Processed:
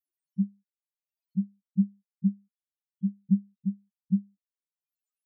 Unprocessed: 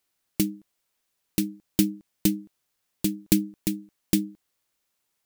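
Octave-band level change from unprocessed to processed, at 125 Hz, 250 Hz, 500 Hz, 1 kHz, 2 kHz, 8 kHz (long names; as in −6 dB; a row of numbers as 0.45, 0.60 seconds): +1.0 dB, −2.5 dB, below −35 dB, can't be measured, below −40 dB, below −40 dB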